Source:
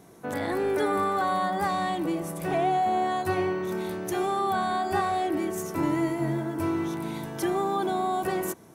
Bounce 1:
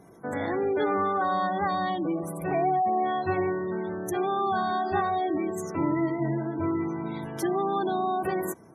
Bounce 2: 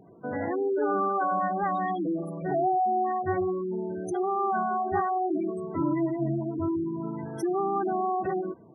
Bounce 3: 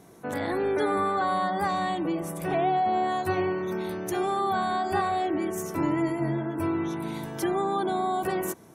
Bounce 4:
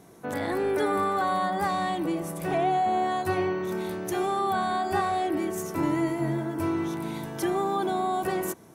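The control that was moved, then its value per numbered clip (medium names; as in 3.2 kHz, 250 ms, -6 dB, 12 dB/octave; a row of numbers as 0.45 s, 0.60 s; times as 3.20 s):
spectral gate, under each frame's peak: -25 dB, -15 dB, -40 dB, -55 dB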